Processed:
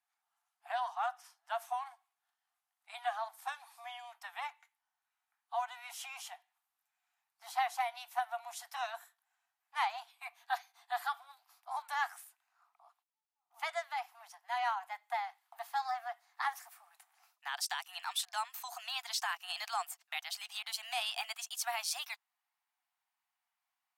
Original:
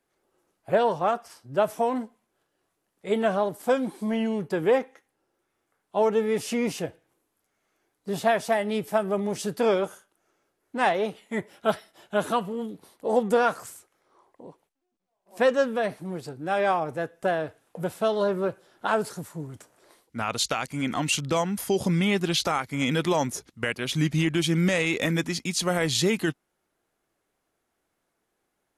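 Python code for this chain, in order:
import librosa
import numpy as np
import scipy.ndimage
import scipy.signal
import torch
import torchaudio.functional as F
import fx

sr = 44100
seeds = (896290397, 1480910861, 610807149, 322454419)

y = fx.speed_glide(x, sr, from_pct=104, to_pct=136)
y = scipy.signal.sosfilt(scipy.signal.cheby1(8, 1.0, 700.0, 'highpass', fs=sr, output='sos'), y)
y = F.gain(torch.from_numpy(y), -9.0).numpy()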